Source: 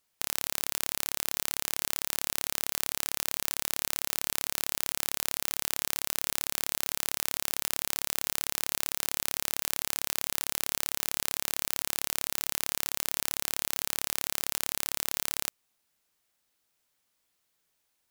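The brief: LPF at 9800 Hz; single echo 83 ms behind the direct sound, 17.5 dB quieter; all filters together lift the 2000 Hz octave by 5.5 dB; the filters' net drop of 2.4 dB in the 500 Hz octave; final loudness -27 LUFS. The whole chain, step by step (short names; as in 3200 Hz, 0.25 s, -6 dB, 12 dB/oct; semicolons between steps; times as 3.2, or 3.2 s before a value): LPF 9800 Hz; bell 500 Hz -3.5 dB; bell 2000 Hz +7 dB; echo 83 ms -17.5 dB; gain +5.5 dB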